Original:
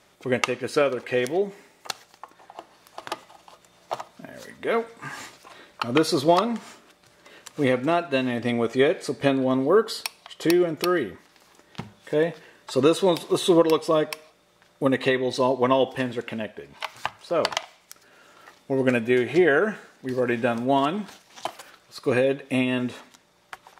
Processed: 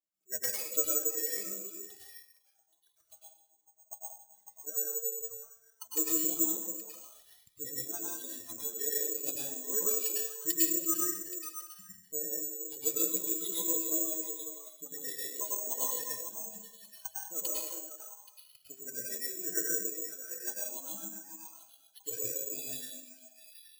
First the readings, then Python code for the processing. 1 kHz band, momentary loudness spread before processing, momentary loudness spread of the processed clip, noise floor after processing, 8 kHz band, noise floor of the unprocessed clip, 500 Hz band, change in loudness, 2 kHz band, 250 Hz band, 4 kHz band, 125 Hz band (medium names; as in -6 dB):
-23.0 dB, 16 LU, 18 LU, -70 dBFS, +9.5 dB, -60 dBFS, -21.0 dB, -8.5 dB, -20.0 dB, -19.0 dB, -13.0 dB, -27.0 dB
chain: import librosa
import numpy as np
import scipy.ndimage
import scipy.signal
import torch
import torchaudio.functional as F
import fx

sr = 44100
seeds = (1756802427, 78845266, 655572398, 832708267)

y = fx.noise_reduce_blind(x, sr, reduce_db=27)
y = fx.dynamic_eq(y, sr, hz=200.0, q=1.2, threshold_db=-38.0, ratio=4.0, max_db=-7)
y = fx.rider(y, sr, range_db=10, speed_s=2.0)
y = fx.stiff_resonator(y, sr, f0_hz=93.0, decay_s=0.26, stiffness=0.03)
y = fx.tremolo_shape(y, sr, shape='triangle', hz=6.7, depth_pct=80)
y = fx.rotary(y, sr, hz=7.5)
y = fx.echo_stepped(y, sr, ms=275, hz=370.0, octaves=1.4, feedback_pct=70, wet_db=-3.5)
y = fx.rev_plate(y, sr, seeds[0], rt60_s=0.6, hf_ratio=1.0, predelay_ms=90, drr_db=-4.5)
y = (np.kron(y[::6], np.eye(6)[0]) * 6)[:len(y)]
y = fx.notch_cascade(y, sr, direction='rising', hz=1.3)
y = y * 10.0 ** (-7.5 / 20.0)